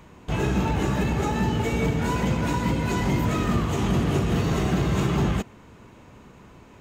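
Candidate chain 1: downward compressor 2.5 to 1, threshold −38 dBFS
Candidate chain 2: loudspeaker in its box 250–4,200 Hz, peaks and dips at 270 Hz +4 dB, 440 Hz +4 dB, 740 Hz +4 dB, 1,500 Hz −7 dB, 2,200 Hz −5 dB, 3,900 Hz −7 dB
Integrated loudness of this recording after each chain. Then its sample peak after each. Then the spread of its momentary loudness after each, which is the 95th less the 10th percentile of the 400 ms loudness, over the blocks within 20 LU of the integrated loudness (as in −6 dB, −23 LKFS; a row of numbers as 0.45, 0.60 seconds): −36.0, −27.0 LKFS; −24.0, −13.0 dBFS; 14, 2 LU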